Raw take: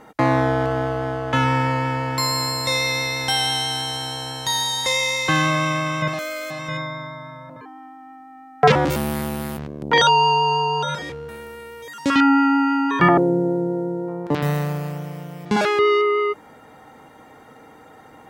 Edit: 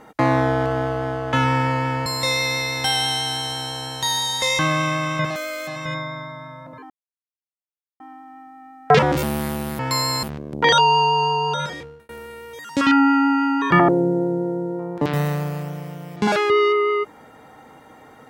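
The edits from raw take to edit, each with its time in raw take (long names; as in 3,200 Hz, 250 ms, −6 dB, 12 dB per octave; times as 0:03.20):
0:02.06–0:02.50: move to 0:09.52
0:05.03–0:05.42: remove
0:07.73: splice in silence 1.10 s
0:10.96–0:11.38: fade out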